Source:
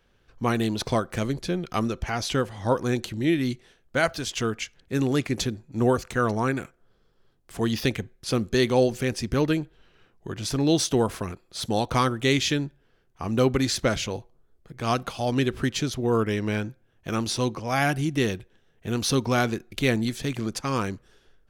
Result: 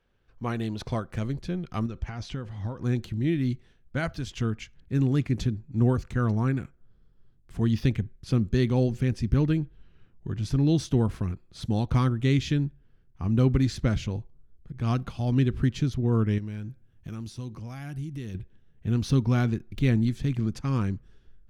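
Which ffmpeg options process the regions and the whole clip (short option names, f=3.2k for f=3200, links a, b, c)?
-filter_complex "[0:a]asettb=1/sr,asplit=3[a][b][c];[a]atrim=end=1.864[d];[b]atrim=start=1.86:end=2.83,asetpts=PTS-STARTPTS,afade=t=in:d=0.004:c=qsin,afade=t=out:st=0.966:d=0.004:c=qsin,lowpass=7.5k,acompressor=threshold=-28dB:ratio=4:attack=3.2:release=140:knee=1:detection=peak[e];[c]atrim=start=2.826[f];[d][e]acrossfade=d=0.004:c1=hsin:c2=qsin[g];[g][f]acrossfade=d=0.004:c1=qsin:c2=hsin,asettb=1/sr,asplit=3[h][i][j];[h]atrim=end=16.384[k];[i]atrim=start=16.38:end=18.35,asetpts=PTS-STARTPTS,afade=t=in:d=0.004:c=qsin,afade=t=out:st=1.966:d=0.004:c=qsin,highshelf=f=5.9k:g=12,acompressor=threshold=-39dB:ratio=2.5:attack=3.2:release=140:knee=1:detection=peak[l];[j]atrim=start=18.346[m];[k][l]acrossfade=d=0.004:c1=hsin:c2=qsin[n];[n][m]acrossfade=d=0.004:c1=qsin:c2=hsin,aemphasis=mode=reproduction:type=cd,deesser=0.55,asubboost=boost=5:cutoff=230,volume=-7dB"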